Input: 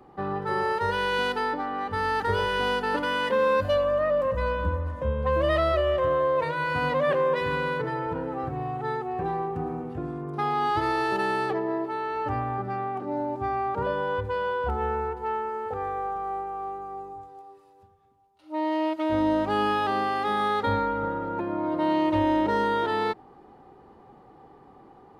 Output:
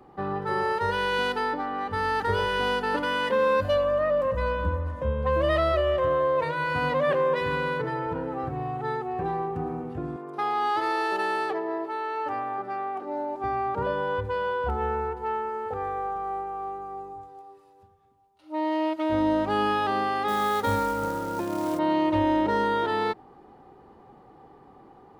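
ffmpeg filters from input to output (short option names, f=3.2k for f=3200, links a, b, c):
-filter_complex "[0:a]asettb=1/sr,asplit=3[a][b][c];[a]atrim=end=10.164[d];[b]atrim=start=10.16:end=13.44,asetpts=PTS-STARTPTS,afade=t=in:d=0.004:c=qsin,afade=t=out:st=3.276:d=0.004:c=qsin,highpass=360[e];[c]atrim=start=13.436[f];[d][e]acrossfade=d=0.004:c1=hsin:c2=qsin[g];[g][f]acrossfade=d=0.004:c1=qsin:c2=hsin,asettb=1/sr,asplit=3[h][i][j];[h]atrim=end=20.284[k];[i]atrim=start=20.28:end=21.79,asetpts=PTS-STARTPTS,afade=t=in:d=0.004:c=qsin,afade=t=out:st=1.506:d=0.004:c=qsin,acrusher=bits=4:mode=log:mix=0:aa=0.000001[l];[j]atrim=start=21.786[m];[k][l]acrossfade=d=0.004:c1=hsin:c2=qsin[n];[n][m]acrossfade=d=0.004:c1=qsin:c2=hsin"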